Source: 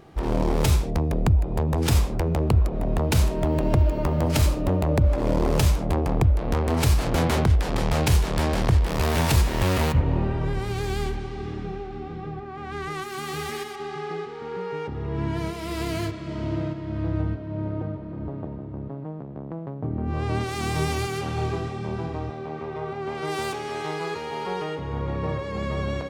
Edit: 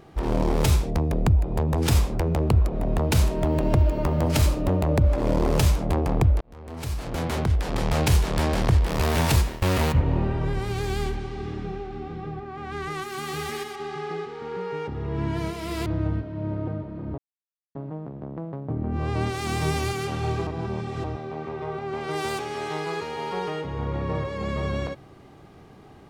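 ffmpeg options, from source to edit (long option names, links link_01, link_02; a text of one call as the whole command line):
ffmpeg -i in.wav -filter_complex "[0:a]asplit=8[link_01][link_02][link_03][link_04][link_05][link_06][link_07][link_08];[link_01]atrim=end=6.41,asetpts=PTS-STARTPTS,afade=type=out:start_time=6.406:duration=0.004:curve=hsin[link_09];[link_02]atrim=start=6.41:end=9.62,asetpts=PTS-STARTPTS,afade=type=in:duration=1.6,afade=type=out:start_time=2.95:duration=0.26:silence=0.0841395[link_10];[link_03]atrim=start=9.62:end=15.862,asetpts=PTS-STARTPTS,afade=type=in:duration=0.004:curve=hsin:silence=0.0841395[link_11];[link_04]atrim=start=16.998:end=18.32,asetpts=PTS-STARTPTS,afade=type=out:start_time=1.318:duration=0.004:curve=hsin[link_12];[link_05]atrim=start=18.32:end=18.89,asetpts=PTS-STARTPTS,volume=0[link_13];[link_06]atrim=start=18.89:end=21.612,asetpts=PTS-STARTPTS,afade=type=in:duration=0.004:curve=hsin[link_14];[link_07]atrim=start=21.608:end=22.182,asetpts=PTS-STARTPTS,areverse[link_15];[link_08]atrim=start=22.178[link_16];[link_09][link_10][link_11]concat=n=3:v=0:a=1[link_17];[link_12][link_13][link_14]concat=n=3:v=0:a=1[link_18];[link_17][link_18]acrossfade=duration=0.004:curve1=hsin:curve2=hsin[link_19];[link_19][link_15]acrossfade=duration=0.004:curve1=hsin:curve2=hsin[link_20];[link_20][link_16]acrossfade=duration=0.004:curve1=hsin:curve2=hsin" out.wav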